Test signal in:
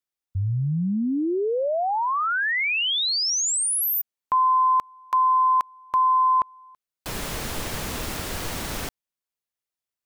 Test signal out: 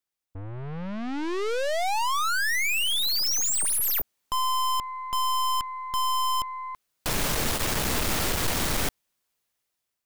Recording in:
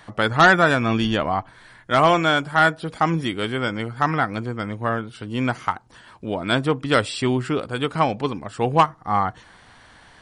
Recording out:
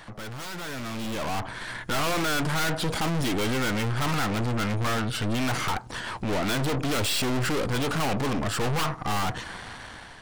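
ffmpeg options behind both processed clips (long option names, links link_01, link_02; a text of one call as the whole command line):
ffmpeg -i in.wav -af "aeval=exprs='0.531*sin(PI/2*2.51*val(0)/0.531)':channel_layout=same,aeval=exprs='(tanh(31.6*val(0)+0.65)-tanh(0.65))/31.6':channel_layout=same,dynaudnorm=framelen=500:gausssize=5:maxgain=11.5dB,volume=-7dB" out.wav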